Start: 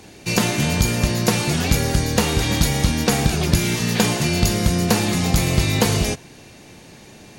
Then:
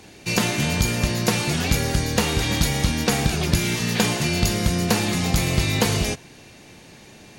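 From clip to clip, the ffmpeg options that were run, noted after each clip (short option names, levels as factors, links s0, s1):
-af "equalizer=f=2500:t=o:w=2.1:g=2.5,volume=0.708"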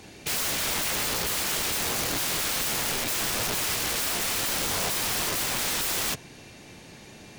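-af "aeval=exprs='(mod(12.6*val(0)+1,2)-1)/12.6':c=same,volume=0.891"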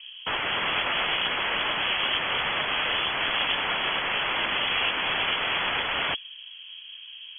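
-filter_complex "[0:a]acrossover=split=270|1200[s0][s1][s2];[s2]acrusher=bits=4:mix=0:aa=0.000001[s3];[s0][s1][s3]amix=inputs=3:normalize=0,lowpass=f=2900:t=q:w=0.5098,lowpass=f=2900:t=q:w=0.6013,lowpass=f=2900:t=q:w=0.9,lowpass=f=2900:t=q:w=2.563,afreqshift=-3400,volume=2"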